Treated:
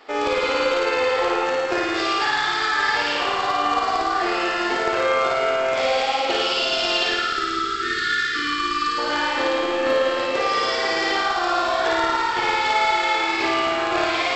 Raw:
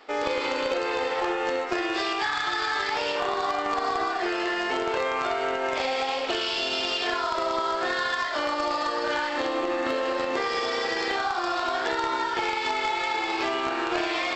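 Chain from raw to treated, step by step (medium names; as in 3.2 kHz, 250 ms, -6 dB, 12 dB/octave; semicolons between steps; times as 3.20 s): spectral selection erased 7.07–8.98 s, 460–1100 Hz; flutter echo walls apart 9.4 m, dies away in 1.4 s; trim +2.5 dB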